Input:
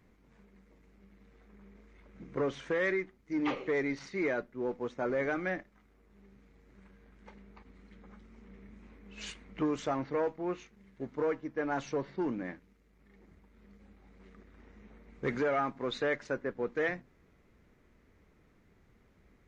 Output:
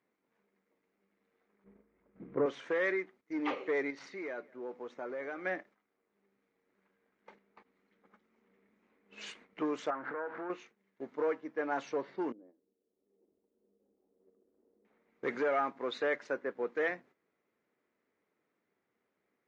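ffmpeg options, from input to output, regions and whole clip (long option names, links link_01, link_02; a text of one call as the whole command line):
ffmpeg -i in.wav -filter_complex "[0:a]asettb=1/sr,asplit=3[link_01][link_02][link_03];[link_01]atrim=end=1.644[link_04];[link_02]atrim=start=1.64:end=2.46,asetpts=PTS-STARTPTS,afade=type=in:duration=0.004:curve=qsin,afade=type=out:start_time=0.816:duration=0.004:curve=qsin,lowpass=frequency=2200:poles=1,aemphasis=mode=reproduction:type=riaa[link_05];[link_03]atrim=start=2.456[link_06];[link_04][link_05]acrossfade=duration=0.004:curve1=hsin:curve2=qsin[link_07];[link_07][link_06]acrossfade=duration=0.004:curve1=qsin:curve2=hsin,asettb=1/sr,asplit=3[link_08][link_09][link_10];[link_08]atrim=end=3.904[link_11];[link_09]atrim=start=3.9:end=5.45,asetpts=PTS-STARTPTS,afade=type=in:duration=0.004:curve=qsin,afade=type=out:start_time=1.546:duration=0.004:curve=qsin,acompressor=threshold=-41dB:ratio=2:attack=3.2:release=140:knee=1:detection=peak,aecho=1:1:195:0.0631,atrim=end_sample=68355[link_12];[link_10]atrim=start=5.446[link_13];[link_11][link_12]acrossfade=duration=0.004:curve1=hsin:curve2=qsin[link_14];[link_14][link_13]acrossfade=duration=0.004:curve1=qsin:curve2=hsin,asettb=1/sr,asplit=3[link_15][link_16][link_17];[link_15]atrim=end=9.904[link_18];[link_16]atrim=start=9.9:end=10.5,asetpts=PTS-STARTPTS,afade=type=in:duration=0.004:curve=qsin,afade=type=out:start_time=0.596:duration=0.004:curve=qsin,aeval=exprs='val(0)+0.5*0.00891*sgn(val(0))':channel_layout=same,acompressor=threshold=-37dB:ratio=6:attack=3.2:release=140:knee=1:detection=peak,lowpass=frequency=1500:width_type=q:width=5.2[link_19];[link_17]atrim=start=10.496[link_20];[link_18][link_19]acrossfade=duration=0.004:curve1=hsin:curve2=qsin[link_21];[link_21][link_20]acrossfade=duration=0.004:curve1=qsin:curve2=hsin,asettb=1/sr,asplit=3[link_22][link_23][link_24];[link_22]atrim=end=12.324[link_25];[link_23]atrim=start=12.32:end=14.85,asetpts=PTS-STARTPTS,afade=type=in:duration=0.004:curve=qsin,afade=type=out:start_time=2.526:duration=0.004:curve=qsin,equalizer=frequency=150:width_type=o:width=0.43:gain=-12,acompressor=threshold=-52dB:ratio=10:attack=3.2:release=140:knee=1:detection=peak,lowpass=frequency=440:width_type=q:width=1.8[link_26];[link_24]atrim=start=14.846[link_27];[link_25][link_26]acrossfade=duration=0.004:curve1=hsin:curve2=qsin[link_28];[link_28][link_27]acrossfade=duration=0.004:curve1=qsin:curve2=hsin,highpass=340,agate=range=-11dB:threshold=-57dB:ratio=16:detection=peak,aemphasis=mode=reproduction:type=cd" out.wav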